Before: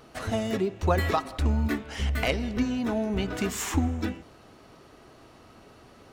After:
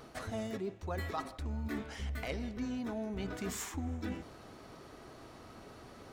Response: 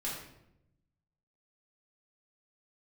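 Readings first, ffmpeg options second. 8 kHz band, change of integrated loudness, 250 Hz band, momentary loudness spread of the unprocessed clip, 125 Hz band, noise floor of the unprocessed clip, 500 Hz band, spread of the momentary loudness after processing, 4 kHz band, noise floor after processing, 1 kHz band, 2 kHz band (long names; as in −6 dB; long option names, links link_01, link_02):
−9.0 dB, −11.5 dB, −10.5 dB, 5 LU, −12.0 dB, −53 dBFS, −11.5 dB, 14 LU, −12.0 dB, −54 dBFS, −11.5 dB, −11.5 dB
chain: -af "equalizer=frequency=2800:width=6.8:gain=-5,areverse,acompressor=threshold=-36dB:ratio=6,areverse"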